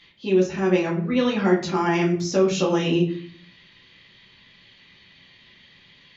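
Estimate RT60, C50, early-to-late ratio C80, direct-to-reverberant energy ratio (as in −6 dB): 0.50 s, 8.5 dB, 12.5 dB, −4.0 dB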